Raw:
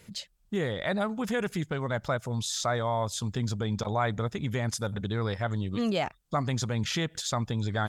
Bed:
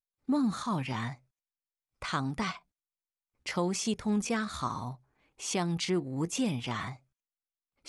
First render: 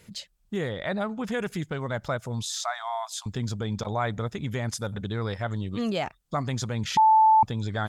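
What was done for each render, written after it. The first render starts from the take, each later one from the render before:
0:00.69–0:01.32: high-shelf EQ 7,300 Hz −10.5 dB
0:02.45–0:03.26: linear-phase brick-wall high-pass 620 Hz
0:06.97–0:07.43: beep over 877 Hz −14 dBFS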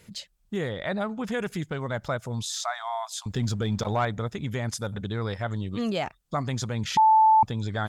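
0:03.30–0:04.05: leveller curve on the samples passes 1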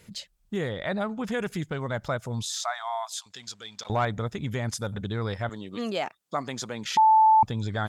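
0:03.21–0:03.90: resonant band-pass 4,900 Hz, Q 0.68
0:05.49–0:07.26: high-pass filter 260 Hz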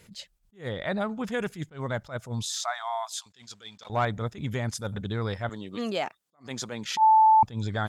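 level that may rise only so fast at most 220 dB per second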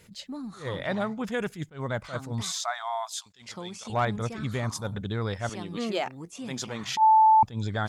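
mix in bed −9.5 dB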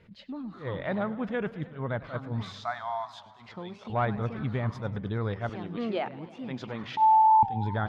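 high-frequency loss of the air 360 metres
feedback echo with a swinging delay time 104 ms, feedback 73%, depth 207 cents, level −18 dB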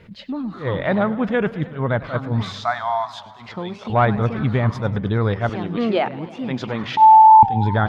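level +11 dB

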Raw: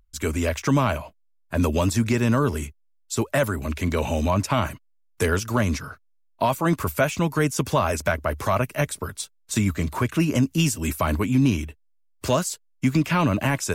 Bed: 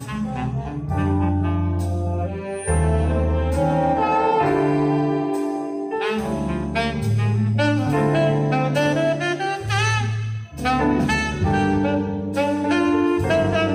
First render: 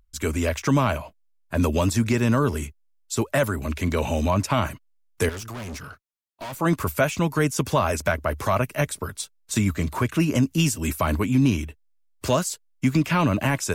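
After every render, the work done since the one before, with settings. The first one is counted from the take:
0:05.29–0:06.60: tube saturation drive 32 dB, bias 0.4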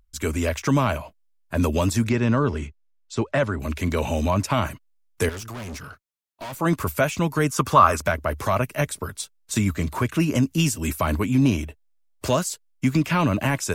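0:02.09–0:03.60: Gaussian smoothing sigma 1.5 samples
0:07.48–0:08.01: parametric band 1,200 Hz +14.5 dB 0.53 octaves
0:11.38–0:12.27: parametric band 640 Hz +8.5 dB 0.83 octaves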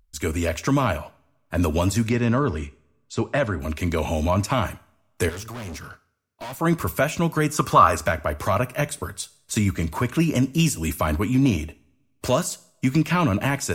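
coupled-rooms reverb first 0.52 s, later 1.8 s, from −26 dB, DRR 15 dB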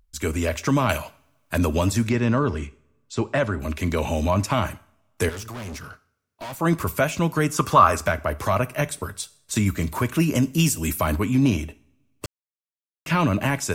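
0:00.89–0:01.58: high-shelf EQ 2,200 Hz +11.5 dB
0:09.66–0:11.16: high-shelf EQ 11,000 Hz +9.5 dB
0:12.26–0:13.06: silence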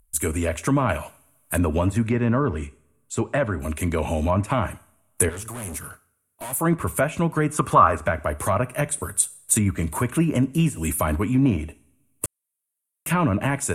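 treble cut that deepens with the level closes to 2,300 Hz, closed at −16.5 dBFS
high shelf with overshoot 7,200 Hz +13.5 dB, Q 3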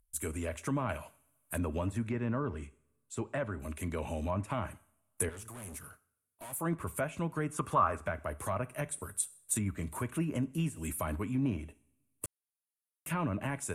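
level −12.5 dB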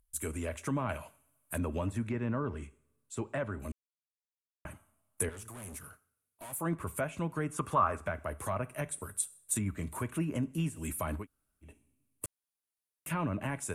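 0:03.72–0:04.65: silence
0:11.22–0:11.66: fill with room tone, crossfade 0.10 s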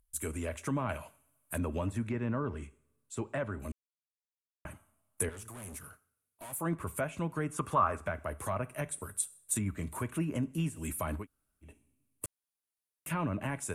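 no processing that can be heard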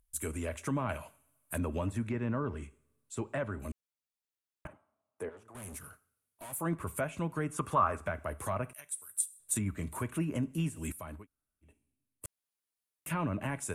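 0:04.67–0:05.55: resonant band-pass 610 Hz, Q 0.93
0:08.73–0:09.40: first-order pre-emphasis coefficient 0.97
0:10.92–0:12.25: clip gain −9 dB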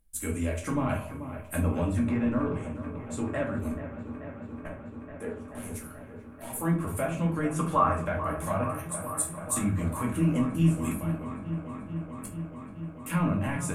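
delay with a low-pass on its return 435 ms, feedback 82%, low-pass 2,500 Hz, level −11.5 dB
rectangular room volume 260 cubic metres, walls furnished, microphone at 2.2 metres

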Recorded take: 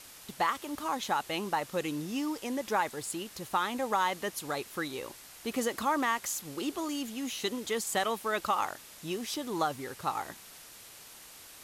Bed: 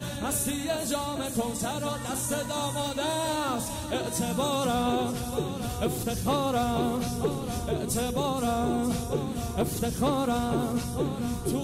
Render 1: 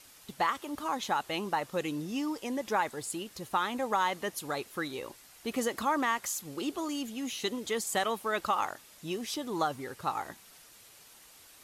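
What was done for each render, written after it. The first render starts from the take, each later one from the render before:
broadband denoise 6 dB, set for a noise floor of −51 dBFS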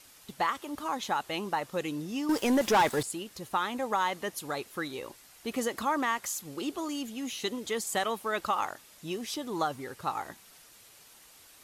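0:02.29–0:03.03: leveller curve on the samples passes 3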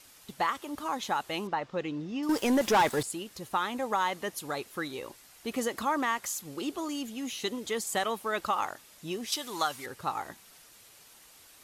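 0:01.47–0:02.23: high-frequency loss of the air 160 metres
0:09.32–0:09.86: tilt shelving filter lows −8.5 dB, about 880 Hz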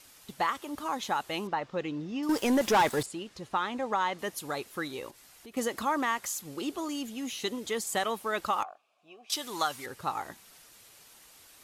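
0:03.06–0:04.19: high-frequency loss of the air 70 metres
0:05.10–0:05.57: downward compressor 2.5 to 1, threshold −51 dBFS
0:08.63–0:09.30: formant filter a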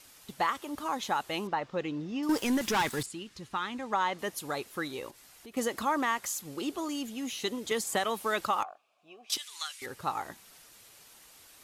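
0:02.43–0:03.93: parametric band 610 Hz −9.5 dB 1.3 octaves
0:07.71–0:08.46: multiband upward and downward compressor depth 70%
0:09.37–0:09.82: Chebyshev band-pass filter 2,200–9,500 Hz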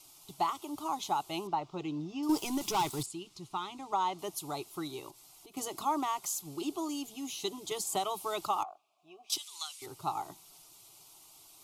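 phaser with its sweep stopped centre 340 Hz, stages 8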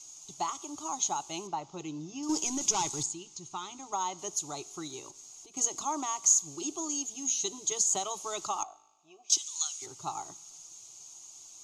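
low-pass with resonance 6,600 Hz, resonance Q 13
tuned comb filter 52 Hz, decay 1.1 s, harmonics all, mix 30%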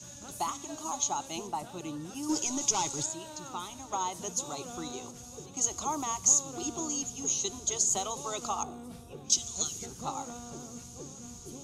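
mix in bed −17.5 dB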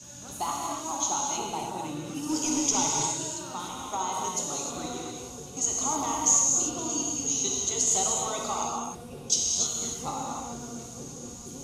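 reverb whose tail is shaped and stops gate 330 ms flat, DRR −2.5 dB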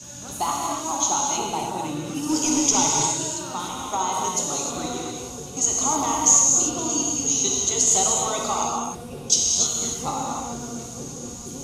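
level +6 dB

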